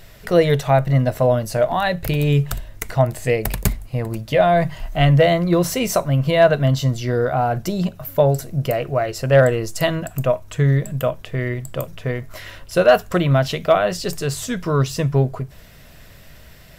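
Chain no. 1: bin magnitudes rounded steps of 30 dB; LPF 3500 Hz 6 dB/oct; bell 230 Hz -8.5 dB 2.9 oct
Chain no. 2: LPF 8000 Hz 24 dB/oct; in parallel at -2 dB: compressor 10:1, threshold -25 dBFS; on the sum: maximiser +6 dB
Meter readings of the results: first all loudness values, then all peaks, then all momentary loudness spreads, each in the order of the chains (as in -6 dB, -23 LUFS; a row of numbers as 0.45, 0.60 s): -25.0, -13.0 LUFS; -6.5, -1.0 dBFS; 12, 8 LU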